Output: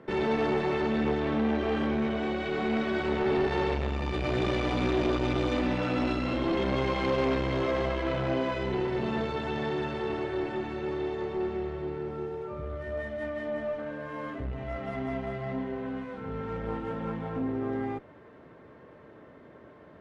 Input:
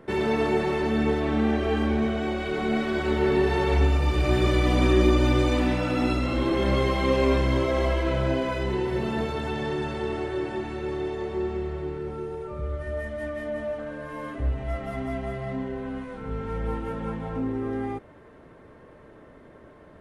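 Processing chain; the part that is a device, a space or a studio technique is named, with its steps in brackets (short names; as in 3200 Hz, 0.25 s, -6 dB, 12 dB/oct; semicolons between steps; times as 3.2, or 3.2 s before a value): valve radio (BPF 90–5000 Hz; tube stage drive 20 dB, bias 0.55; core saturation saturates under 270 Hz); gain +1 dB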